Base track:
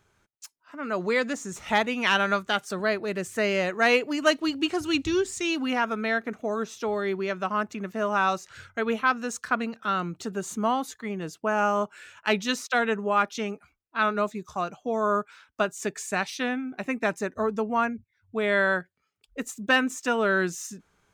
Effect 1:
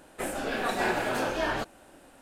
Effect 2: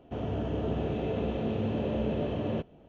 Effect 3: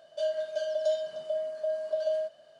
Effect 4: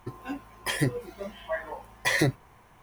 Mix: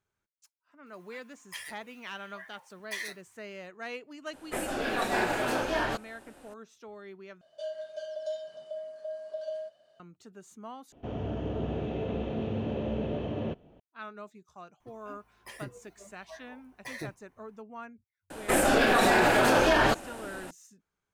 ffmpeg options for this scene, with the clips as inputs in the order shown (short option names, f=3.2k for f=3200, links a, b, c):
-filter_complex "[4:a]asplit=2[a][b];[1:a]asplit=2[c][d];[0:a]volume=-18.5dB[e];[a]highpass=1.5k[f];[b]bandreject=f=3.3k:w=18[g];[d]alimiter=level_in=23.5dB:limit=-1dB:release=50:level=0:latency=1[h];[e]asplit=3[i][j][k];[i]atrim=end=7.414[l];[3:a]atrim=end=2.59,asetpts=PTS-STARTPTS,volume=-7.5dB[m];[j]atrim=start=9.996:end=10.924[n];[2:a]atrim=end=2.88,asetpts=PTS-STARTPTS,volume=-2dB[o];[k]atrim=start=13.796[p];[f]atrim=end=2.82,asetpts=PTS-STARTPTS,volume=-9.5dB,afade=t=in:d=0.004:c=hsin,afade=t=out:st=2.816:d=0.004:c=hsin,adelay=860[q];[c]atrim=end=2.21,asetpts=PTS-STARTPTS,volume=-0.5dB,afade=t=in:d=0.004:c=hsin,afade=t=out:st=2.206:d=0.004:c=hsin,adelay=190953S[r];[g]atrim=end=2.82,asetpts=PTS-STARTPTS,volume=-16.5dB,afade=t=in:d=0.004:c=hsin,afade=t=out:st=2.816:d=0.004:c=hsin,adelay=14800[s];[h]atrim=end=2.21,asetpts=PTS-STARTPTS,volume=-12.5dB,afade=t=in:d=0.004:c=hsin,afade=t=out:st=2.206:d=0.004:c=hsin,adelay=18300[t];[l][m]acrossfade=d=0.004:c1=hsin:c2=hsin[u];[u][n]acrossfade=d=0.004:c1=hsin:c2=hsin[v];[v][o]acrossfade=d=0.004:c1=hsin:c2=hsin[w];[w][p]acrossfade=d=0.004:c1=hsin:c2=hsin[x];[x][q][r][s][t]amix=inputs=5:normalize=0"